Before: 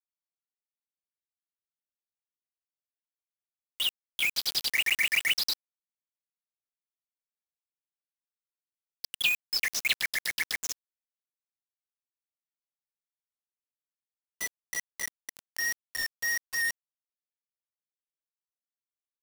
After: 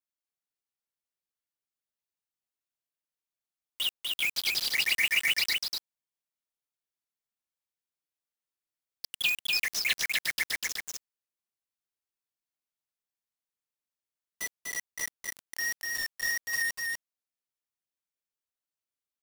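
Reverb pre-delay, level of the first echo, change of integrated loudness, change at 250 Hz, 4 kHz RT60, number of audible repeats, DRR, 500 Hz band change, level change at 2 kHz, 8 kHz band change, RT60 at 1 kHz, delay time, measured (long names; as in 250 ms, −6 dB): no reverb audible, −3.0 dB, 0.0 dB, +0.5 dB, no reverb audible, 1, no reverb audible, +0.5 dB, 0.0 dB, +0.5 dB, no reverb audible, 246 ms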